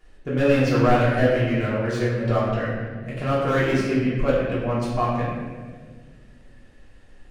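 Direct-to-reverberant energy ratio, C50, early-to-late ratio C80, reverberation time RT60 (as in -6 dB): -9.0 dB, 0.0 dB, 2.0 dB, 1.7 s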